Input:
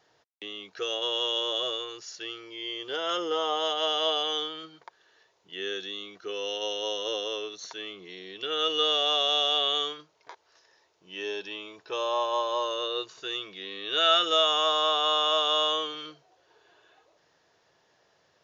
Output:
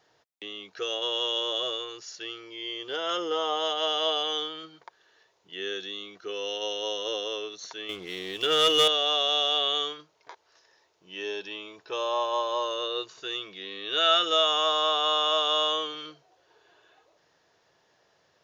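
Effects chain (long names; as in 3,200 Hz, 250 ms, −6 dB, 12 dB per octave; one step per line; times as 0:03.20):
0:07.89–0:08.88: leveller curve on the samples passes 2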